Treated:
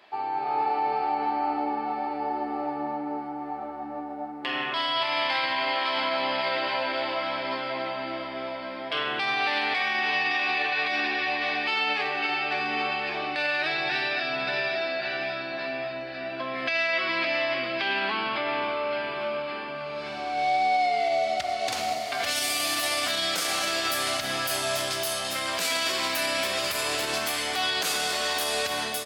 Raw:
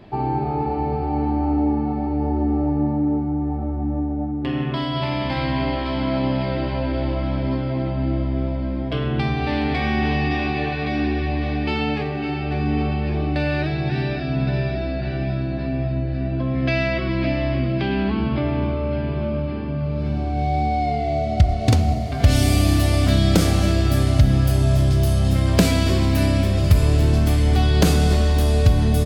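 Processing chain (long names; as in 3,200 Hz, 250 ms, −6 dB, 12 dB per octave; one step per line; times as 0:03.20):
high-pass filter 1,000 Hz 12 dB per octave
automatic gain control gain up to 7.5 dB
brickwall limiter −17.5 dBFS, peak gain reduction 14.5 dB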